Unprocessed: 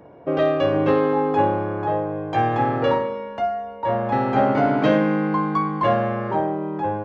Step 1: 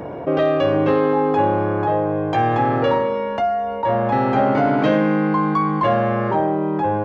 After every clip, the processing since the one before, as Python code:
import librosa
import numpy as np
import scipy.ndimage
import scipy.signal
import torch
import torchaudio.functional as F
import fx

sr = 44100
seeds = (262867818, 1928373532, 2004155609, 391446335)

y = fx.env_flatten(x, sr, amount_pct=50)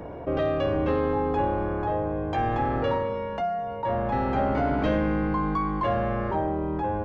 y = fx.octave_divider(x, sr, octaves=2, level_db=-3.0)
y = y * 10.0 ** (-8.0 / 20.0)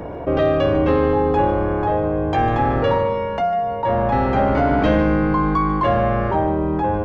y = x + 10.0 ** (-13.5 / 20.0) * np.pad(x, (int(147 * sr / 1000.0), 0))[:len(x)]
y = y * 10.0 ** (7.5 / 20.0)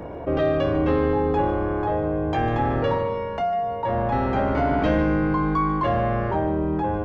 y = fx.doubler(x, sr, ms=26.0, db=-12.0)
y = y * 10.0 ** (-4.5 / 20.0)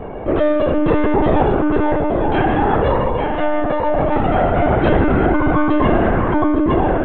y = fx.echo_feedback(x, sr, ms=863, feedback_pct=28, wet_db=-4.5)
y = fx.lpc_monotone(y, sr, seeds[0], pitch_hz=300.0, order=16)
y = y * 10.0 ** (6.0 / 20.0)